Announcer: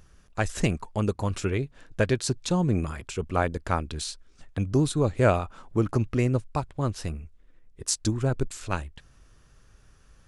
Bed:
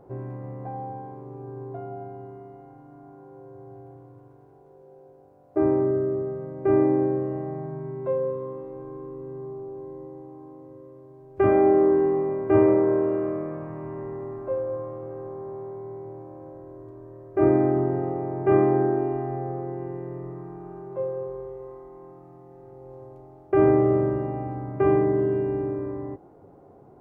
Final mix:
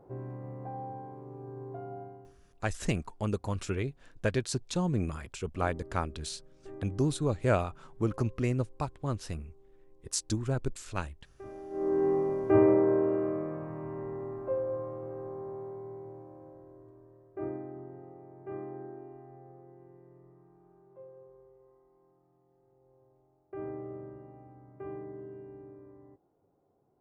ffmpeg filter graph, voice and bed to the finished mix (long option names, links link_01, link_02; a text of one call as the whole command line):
ffmpeg -i stem1.wav -i stem2.wav -filter_complex "[0:a]adelay=2250,volume=-5.5dB[link_01];[1:a]volume=17dB,afade=type=out:start_time=1.98:duration=0.4:silence=0.0891251,afade=type=in:start_time=11.7:duration=0.41:silence=0.0749894,afade=type=out:start_time=15.39:duration=2.26:silence=0.133352[link_02];[link_01][link_02]amix=inputs=2:normalize=0" out.wav